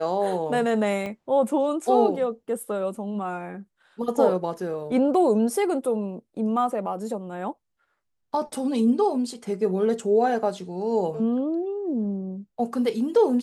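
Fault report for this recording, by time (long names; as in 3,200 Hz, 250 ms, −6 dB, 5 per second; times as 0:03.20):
0:01.06: drop-out 3.2 ms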